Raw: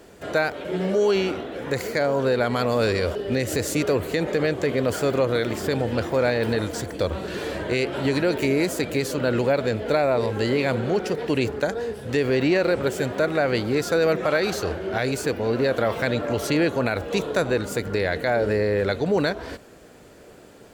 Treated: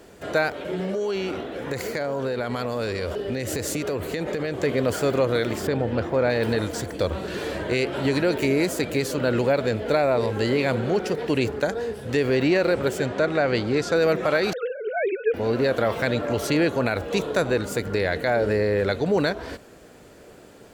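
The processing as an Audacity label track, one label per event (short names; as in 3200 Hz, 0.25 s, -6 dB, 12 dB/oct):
0.550000	4.540000	compressor 5:1, threshold -23 dBFS
5.670000	6.300000	LPF 2100 Hz 6 dB/oct
12.980000	13.960000	LPF 7300 Hz
14.530000	15.340000	sine-wave speech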